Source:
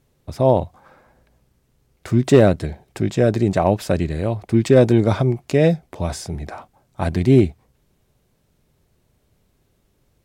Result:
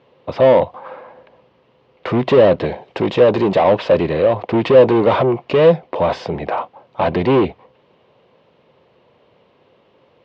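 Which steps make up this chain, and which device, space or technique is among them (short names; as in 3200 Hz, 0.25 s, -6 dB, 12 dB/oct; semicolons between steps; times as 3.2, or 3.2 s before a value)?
2.65–3.65 high shelf 6100 Hz +11 dB; overdrive pedal into a guitar cabinet (overdrive pedal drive 28 dB, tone 1400 Hz, clips at -2.5 dBFS; speaker cabinet 88–4300 Hz, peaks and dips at 510 Hz +9 dB, 1000 Hz +6 dB, 1500 Hz -4 dB, 2900 Hz +6 dB); gain -5 dB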